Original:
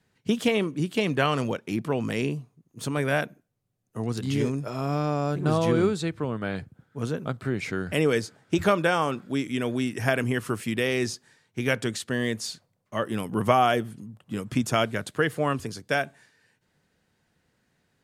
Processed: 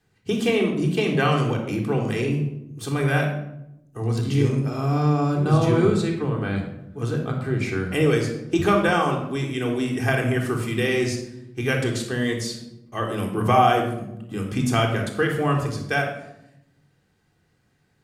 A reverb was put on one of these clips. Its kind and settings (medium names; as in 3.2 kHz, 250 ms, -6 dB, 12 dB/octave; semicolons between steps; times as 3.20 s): simulated room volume 2400 m³, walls furnished, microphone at 3.7 m; trim -1 dB